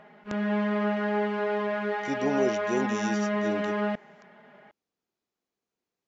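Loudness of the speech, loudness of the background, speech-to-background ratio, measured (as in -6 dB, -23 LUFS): -32.0 LUFS, -28.5 LUFS, -3.5 dB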